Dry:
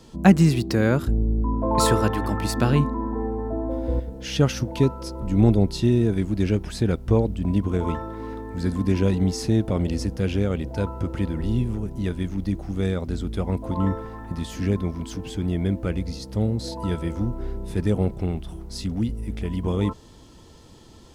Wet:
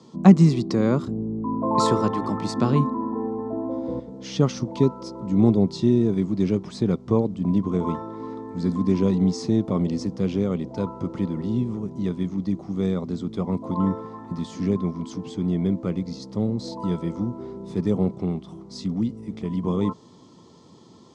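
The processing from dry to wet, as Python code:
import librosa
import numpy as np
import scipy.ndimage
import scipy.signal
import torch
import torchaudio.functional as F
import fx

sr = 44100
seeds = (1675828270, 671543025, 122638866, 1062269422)

y = fx.cabinet(x, sr, low_hz=110.0, low_slope=24, high_hz=7200.0, hz=(180.0, 250.0, 390.0, 1100.0, 1600.0, 2700.0), db=(6, 4, 4, 8, -10, -7))
y = y * 10.0 ** (-2.5 / 20.0)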